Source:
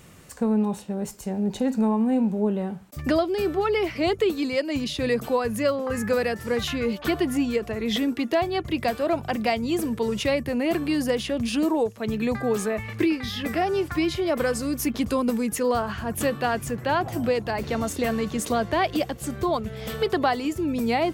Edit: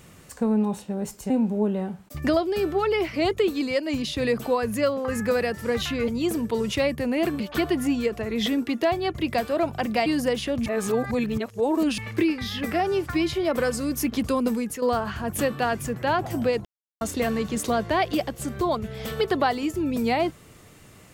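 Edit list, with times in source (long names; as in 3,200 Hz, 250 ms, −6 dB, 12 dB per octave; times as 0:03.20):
0:01.30–0:02.12: remove
0:09.56–0:10.88: move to 0:06.90
0:11.48–0:12.80: reverse
0:15.35–0:15.64: fade out, to −9 dB
0:17.47–0:17.83: silence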